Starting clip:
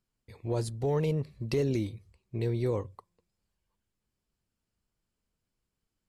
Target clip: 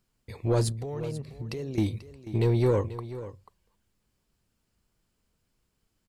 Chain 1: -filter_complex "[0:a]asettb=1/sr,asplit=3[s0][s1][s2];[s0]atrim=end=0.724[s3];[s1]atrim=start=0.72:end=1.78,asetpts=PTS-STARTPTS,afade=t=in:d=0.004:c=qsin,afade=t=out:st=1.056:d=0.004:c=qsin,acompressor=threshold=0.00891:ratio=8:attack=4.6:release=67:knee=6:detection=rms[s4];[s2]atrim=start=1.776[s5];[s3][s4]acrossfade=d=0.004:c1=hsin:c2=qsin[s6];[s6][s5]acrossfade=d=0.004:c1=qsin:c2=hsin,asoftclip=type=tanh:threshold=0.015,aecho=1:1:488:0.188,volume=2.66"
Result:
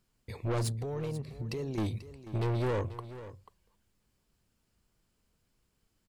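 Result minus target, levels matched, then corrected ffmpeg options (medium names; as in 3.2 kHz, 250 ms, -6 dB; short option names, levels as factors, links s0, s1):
saturation: distortion +11 dB
-filter_complex "[0:a]asettb=1/sr,asplit=3[s0][s1][s2];[s0]atrim=end=0.724[s3];[s1]atrim=start=0.72:end=1.78,asetpts=PTS-STARTPTS,afade=t=in:d=0.004:c=qsin,afade=t=out:st=1.056:d=0.004:c=qsin,acompressor=threshold=0.00891:ratio=8:attack=4.6:release=67:knee=6:detection=rms[s4];[s2]atrim=start=1.776[s5];[s3][s4]acrossfade=d=0.004:c1=hsin:c2=qsin[s6];[s6][s5]acrossfade=d=0.004:c1=qsin:c2=hsin,asoftclip=type=tanh:threshold=0.0596,aecho=1:1:488:0.188,volume=2.66"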